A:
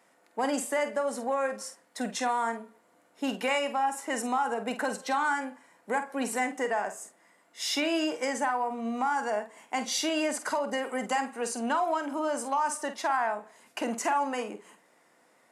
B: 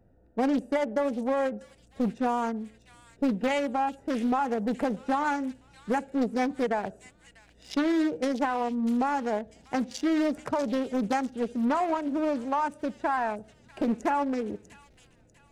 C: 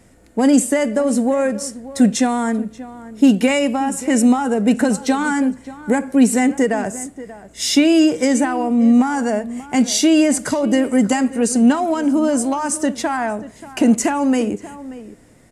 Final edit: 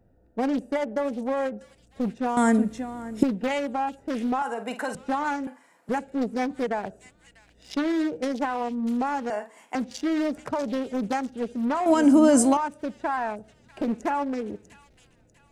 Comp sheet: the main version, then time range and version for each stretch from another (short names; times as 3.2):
B
2.37–3.23 from C
4.42–4.95 from A
5.47–5.89 from A
9.3–9.75 from A
11.86–12.57 from C